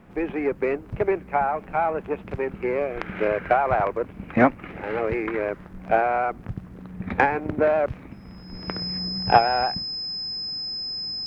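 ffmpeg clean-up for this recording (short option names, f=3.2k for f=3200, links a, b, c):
-af "bandreject=f=5.1k:w=30"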